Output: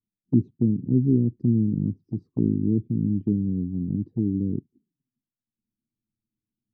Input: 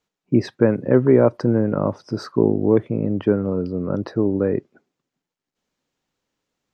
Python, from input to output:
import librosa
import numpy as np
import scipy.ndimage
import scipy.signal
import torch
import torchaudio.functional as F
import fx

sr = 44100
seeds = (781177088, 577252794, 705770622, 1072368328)

y = scipy.signal.sosfilt(scipy.signal.cheby2(4, 40, 560.0, 'lowpass', fs=sr, output='sos'), x)
y = fx.env_flanger(y, sr, rest_ms=9.1, full_db=-21.0)